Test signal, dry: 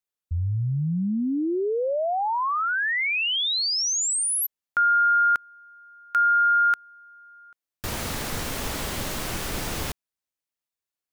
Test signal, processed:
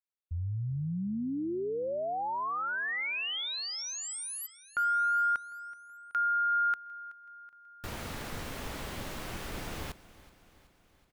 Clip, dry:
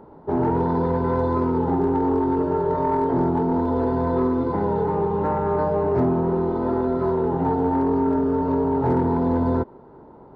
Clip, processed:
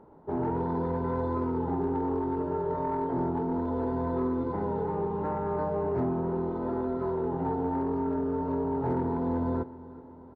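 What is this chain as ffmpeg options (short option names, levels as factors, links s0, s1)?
-filter_complex "[0:a]bass=f=250:g=0,treble=f=4000:g=-6,asplit=2[s0][s1];[s1]aecho=0:1:376|752|1128|1504|1880:0.112|0.0651|0.0377|0.0219|0.0127[s2];[s0][s2]amix=inputs=2:normalize=0,volume=0.376"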